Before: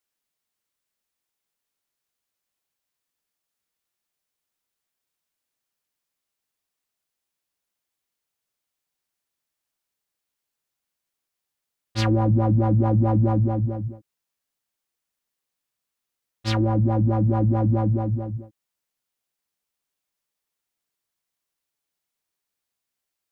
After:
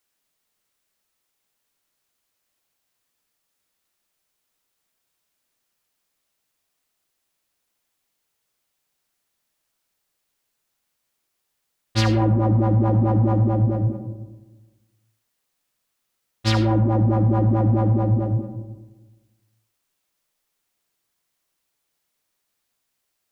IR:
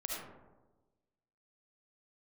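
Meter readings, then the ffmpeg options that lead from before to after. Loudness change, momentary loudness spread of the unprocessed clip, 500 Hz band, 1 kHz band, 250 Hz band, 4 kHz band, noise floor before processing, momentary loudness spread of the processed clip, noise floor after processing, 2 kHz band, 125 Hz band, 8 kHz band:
+1.5 dB, 13 LU, +2.0 dB, +2.0 dB, +2.0 dB, +5.0 dB, -84 dBFS, 9 LU, -76 dBFS, +4.0 dB, +2.5 dB, no reading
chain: -filter_complex "[0:a]acompressor=threshold=0.0708:ratio=6,asplit=2[s0][s1];[1:a]atrim=start_sample=2205[s2];[s1][s2]afir=irnorm=-1:irlink=0,volume=0.668[s3];[s0][s3]amix=inputs=2:normalize=0,volume=1.58"

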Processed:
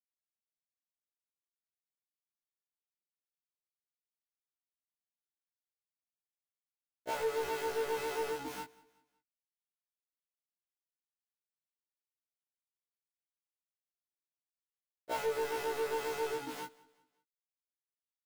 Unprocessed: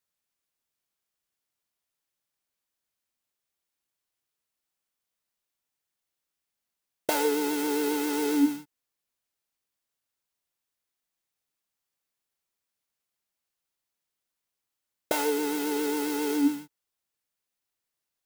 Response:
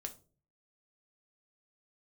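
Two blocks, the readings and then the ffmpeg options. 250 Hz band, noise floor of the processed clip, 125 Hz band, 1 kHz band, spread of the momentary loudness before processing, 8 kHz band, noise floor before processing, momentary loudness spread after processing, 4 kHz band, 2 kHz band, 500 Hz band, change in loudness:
-23.0 dB, under -85 dBFS, no reading, -4.5 dB, 5 LU, -12.5 dB, under -85 dBFS, 11 LU, -8.5 dB, -6.0 dB, -5.0 dB, -9.0 dB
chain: -filter_complex "[0:a]equalizer=f=570:w=1.5:g=5,areverse,acompressor=threshold=0.02:ratio=8,areverse,asplit=2[s0][s1];[s1]highpass=f=720:p=1,volume=17.8,asoftclip=type=tanh:threshold=0.0562[s2];[s0][s2]amix=inputs=2:normalize=0,lowpass=f=2100:p=1,volume=0.501,aeval=exprs='val(0)*gte(abs(val(0)),0.00794)':c=same,aecho=1:1:187|374|561:0.0708|0.029|0.0119,afftfilt=real='re*1.73*eq(mod(b,3),0)':imag='im*1.73*eq(mod(b,3),0)':win_size=2048:overlap=0.75"

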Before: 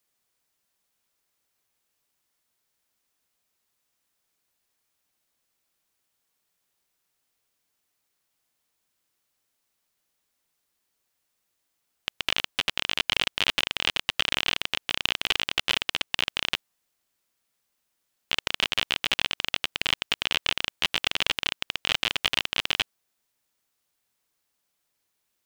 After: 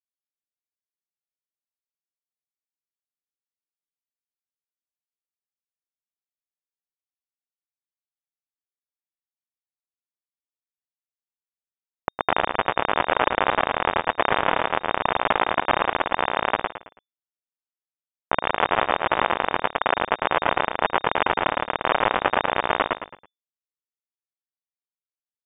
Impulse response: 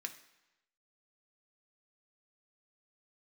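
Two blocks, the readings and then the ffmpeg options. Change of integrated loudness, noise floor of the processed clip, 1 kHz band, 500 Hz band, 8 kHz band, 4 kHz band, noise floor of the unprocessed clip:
+3.0 dB, under -85 dBFS, +16.5 dB, +16.5 dB, under -40 dB, -9.0 dB, -78 dBFS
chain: -filter_complex "[0:a]agate=range=0.0224:threshold=0.0112:ratio=3:detection=peak,aemphasis=mode=production:type=riaa,acrossover=split=320|2100[s0][s1][s2];[s0]acontrast=75[s3];[s3][s1][s2]amix=inputs=3:normalize=0,aeval=exprs='sgn(val(0))*max(abs(val(0))-0.0168,0)':c=same,asplit=2[s4][s5];[s5]asplit=4[s6][s7][s8][s9];[s6]adelay=109,afreqshift=51,volume=0.447[s10];[s7]adelay=218,afreqshift=102,volume=0.148[s11];[s8]adelay=327,afreqshift=153,volume=0.0484[s12];[s9]adelay=436,afreqshift=204,volume=0.016[s13];[s10][s11][s12][s13]amix=inputs=4:normalize=0[s14];[s4][s14]amix=inputs=2:normalize=0,lowpass=f=3100:t=q:w=0.5098,lowpass=f=3100:t=q:w=0.6013,lowpass=f=3100:t=q:w=0.9,lowpass=f=3100:t=q:w=2.563,afreqshift=-3700,alimiter=level_in=3.35:limit=0.891:release=50:level=0:latency=1,volume=0.668"

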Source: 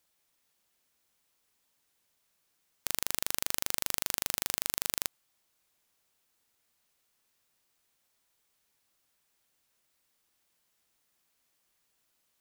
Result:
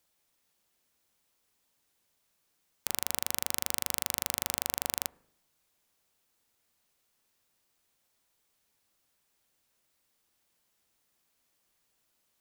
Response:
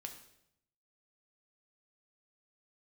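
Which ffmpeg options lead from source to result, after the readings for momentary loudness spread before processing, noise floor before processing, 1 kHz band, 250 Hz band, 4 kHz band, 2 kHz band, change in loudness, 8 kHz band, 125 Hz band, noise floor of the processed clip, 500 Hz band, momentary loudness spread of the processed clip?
4 LU, -76 dBFS, +0.5 dB, +2.0 dB, 0.0 dB, -0.5 dB, 0.0 dB, 0.0 dB, +1.5 dB, -76 dBFS, +1.5 dB, 4 LU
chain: -filter_complex "[0:a]asplit=2[s0][s1];[s1]lowpass=1200[s2];[1:a]atrim=start_sample=2205[s3];[s2][s3]afir=irnorm=-1:irlink=0,volume=0.447[s4];[s0][s4]amix=inputs=2:normalize=0"

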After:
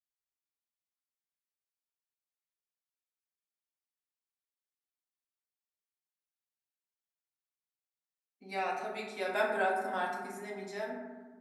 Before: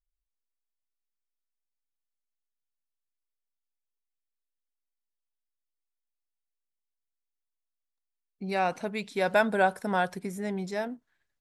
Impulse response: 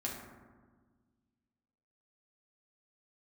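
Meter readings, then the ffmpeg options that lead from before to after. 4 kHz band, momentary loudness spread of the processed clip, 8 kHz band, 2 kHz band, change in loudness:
-5.5 dB, 12 LU, -6.0 dB, -5.5 dB, -6.5 dB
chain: -filter_complex "[0:a]highpass=f=800:p=1[s0];[1:a]atrim=start_sample=2205,asetrate=48510,aresample=44100[s1];[s0][s1]afir=irnorm=-1:irlink=0,volume=0.631"

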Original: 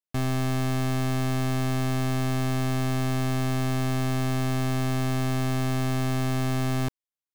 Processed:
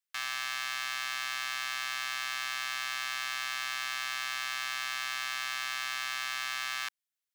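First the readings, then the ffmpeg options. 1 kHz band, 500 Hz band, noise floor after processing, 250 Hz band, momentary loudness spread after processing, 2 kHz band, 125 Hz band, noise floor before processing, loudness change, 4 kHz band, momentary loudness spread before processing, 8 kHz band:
-5.0 dB, -26.0 dB, under -85 dBFS, under -35 dB, 0 LU, +4.0 dB, under -40 dB, under -85 dBFS, -6.0 dB, +4.0 dB, 0 LU, -0.5 dB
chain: -filter_complex "[0:a]acrossover=split=5900[s0][s1];[s0]highpass=f=1300:w=0.5412,highpass=f=1300:w=1.3066[s2];[s1]aeval=exprs='0.0168*(abs(mod(val(0)/0.0168+3,4)-2)-1)':c=same[s3];[s2][s3]amix=inputs=2:normalize=0,volume=1.58"

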